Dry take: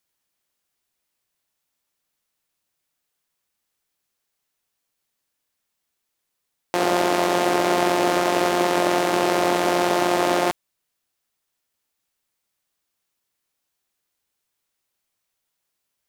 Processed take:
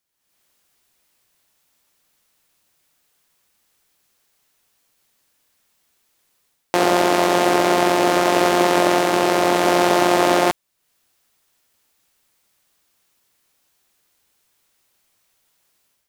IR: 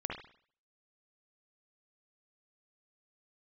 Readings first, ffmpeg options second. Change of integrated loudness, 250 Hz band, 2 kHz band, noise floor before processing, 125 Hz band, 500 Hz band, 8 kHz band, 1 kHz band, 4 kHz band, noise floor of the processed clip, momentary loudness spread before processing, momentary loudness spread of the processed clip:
+3.5 dB, +3.5 dB, +3.5 dB, -79 dBFS, +3.5 dB, +3.5 dB, +3.5 dB, +3.5 dB, +3.5 dB, -70 dBFS, 3 LU, 3 LU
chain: -af "dynaudnorm=f=110:g=5:m=4.47,volume=0.891"

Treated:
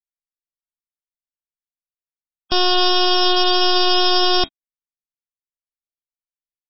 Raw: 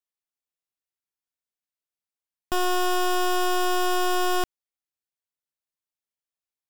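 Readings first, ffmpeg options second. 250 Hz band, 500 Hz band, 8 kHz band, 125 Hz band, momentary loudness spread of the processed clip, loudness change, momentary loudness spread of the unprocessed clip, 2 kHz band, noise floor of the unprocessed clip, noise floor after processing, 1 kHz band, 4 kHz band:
+6.0 dB, +5.5 dB, under -20 dB, no reading, 5 LU, +9.0 dB, 4 LU, +4.5 dB, under -85 dBFS, under -85 dBFS, +5.0 dB, +16.0 dB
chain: -af "anlmdn=15.8,highshelf=f=2800:t=q:w=1.5:g=10.5,volume=2.11" -ar 16000 -c:a libmp3lame -b:a 16k

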